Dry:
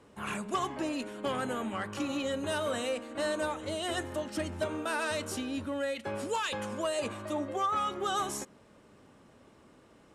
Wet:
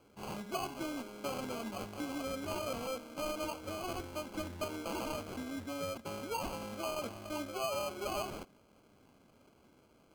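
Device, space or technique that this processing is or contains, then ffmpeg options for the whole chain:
crushed at another speed: -af "asetrate=35280,aresample=44100,acrusher=samples=30:mix=1:aa=0.000001,asetrate=55125,aresample=44100,volume=-6dB"

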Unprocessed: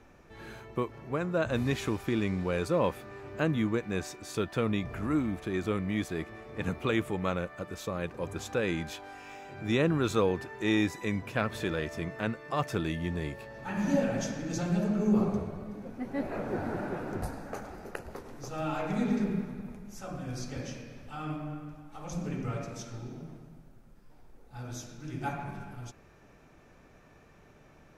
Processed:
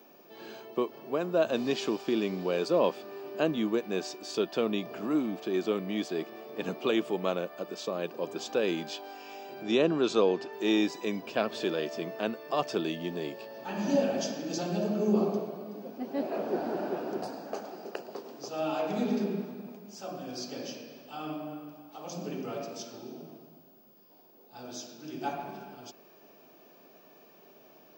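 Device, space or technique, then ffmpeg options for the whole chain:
old television with a line whistle: -filter_complex "[0:a]highpass=frequency=200:width=0.5412,highpass=frequency=200:width=1.3066,equalizer=frequency=390:width_type=q:width=4:gain=5,equalizer=frequency=660:width_type=q:width=4:gain=6,equalizer=frequency=1400:width_type=q:width=4:gain=-4,equalizer=frequency=2000:width_type=q:width=4:gain=-8,equalizer=frequency=3000:width_type=q:width=4:gain=6,equalizer=frequency=4800:width_type=q:width=4:gain=9,lowpass=frequency=7500:width=0.5412,lowpass=frequency=7500:width=1.3066,aeval=exprs='val(0)+0.00112*sin(2*PI*15625*n/s)':channel_layout=same,asettb=1/sr,asplit=3[link_01][link_02][link_03];[link_01]atrim=end=9.634[link_04];[link_02]atrim=start=9.63:end=10.53,asetpts=PTS-STARTPTS,afade=type=in:duration=0.004:curve=qsin,afade=type=out:start_time=0.896:duration=0.004:curve=qsin,lowpass=8900[link_05];[link_03]atrim=start=10.526[link_06];[link_04][link_05]acrossfade=duration=0.004:curve1=hsin:curve2=qsin[link_07];[link_07][link_06]acrossfade=duration=0.004:curve1=qsin:curve2=hsin"

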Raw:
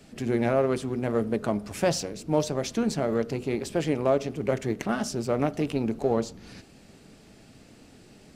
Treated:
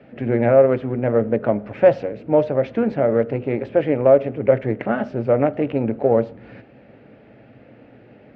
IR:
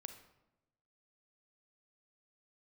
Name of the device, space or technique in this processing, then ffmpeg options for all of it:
bass cabinet: -af "highpass=79,equalizer=frequency=82:width_type=q:width=4:gain=-10,equalizer=frequency=120:width_type=q:width=4:gain=5,equalizer=frequency=170:width_type=q:width=4:gain=-9,equalizer=frequency=380:width_type=q:width=4:gain=-3,equalizer=frequency=540:width_type=q:width=4:gain=8,equalizer=frequency=1100:width_type=q:width=4:gain=-6,lowpass=frequency=2300:width=0.5412,lowpass=frequency=2300:width=1.3066,volume=6.5dB"

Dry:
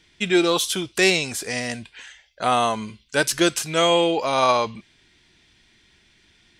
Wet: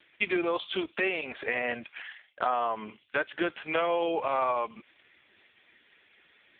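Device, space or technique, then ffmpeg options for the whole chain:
voicemail: -af "highpass=410,lowpass=2800,acompressor=threshold=-30dB:ratio=8,volume=6dB" -ar 8000 -c:a libopencore_amrnb -b:a 4750

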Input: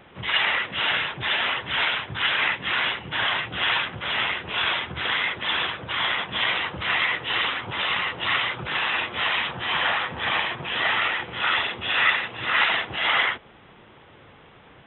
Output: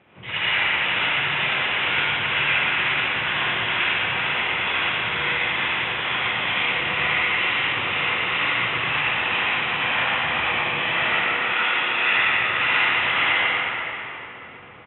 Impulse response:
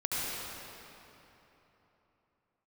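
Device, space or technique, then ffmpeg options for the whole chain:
PA in a hall: -filter_complex "[0:a]highpass=frequency=120:poles=1,equalizer=frequency=2500:width_type=o:width=0.56:gain=8,aecho=1:1:118:0.562[link_01];[1:a]atrim=start_sample=2205[link_02];[link_01][link_02]afir=irnorm=-1:irlink=0,aemphasis=mode=reproduction:type=50fm,asettb=1/sr,asplit=3[link_03][link_04][link_05];[link_03]atrim=end=11.524[link_06];[link_04]atrim=start=11.52:end=12.14,asetpts=PTS-STARTPTS,afade=type=in:duration=0.004:curve=qsin,afade=type=out:start_time=0.616:duration=0.004:curve=qsin,highpass=200[link_07];[link_05]atrim=start=12.136[link_08];[link_06][link_07]acrossfade=duration=0.004:curve1=hsin:curve2=qsin[link_09];[link_09][link_08]acrossfade=duration=0.004:curve1=qsin:curve2=hsin,lowshelf=frequency=500:gain=4,volume=-8.5dB"

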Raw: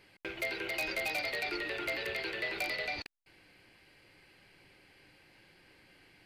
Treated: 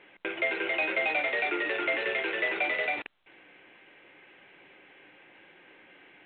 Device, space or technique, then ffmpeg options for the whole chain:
telephone: -af "highpass=280,lowpass=3100,volume=8dB" -ar 8000 -c:a pcm_alaw

